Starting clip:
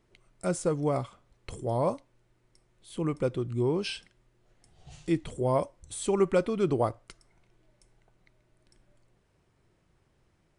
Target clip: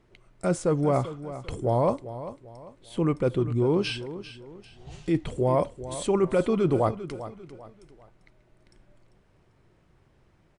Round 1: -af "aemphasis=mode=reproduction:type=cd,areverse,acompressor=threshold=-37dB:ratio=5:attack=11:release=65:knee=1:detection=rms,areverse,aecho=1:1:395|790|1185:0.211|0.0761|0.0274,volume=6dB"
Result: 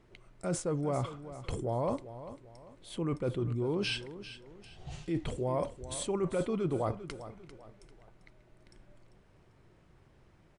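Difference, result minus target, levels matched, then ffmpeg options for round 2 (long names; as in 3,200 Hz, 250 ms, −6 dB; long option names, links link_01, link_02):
downward compressor: peak gain reduction +9 dB
-af "aemphasis=mode=reproduction:type=cd,areverse,acompressor=threshold=-25.5dB:ratio=5:attack=11:release=65:knee=1:detection=rms,areverse,aecho=1:1:395|790|1185:0.211|0.0761|0.0274,volume=6dB"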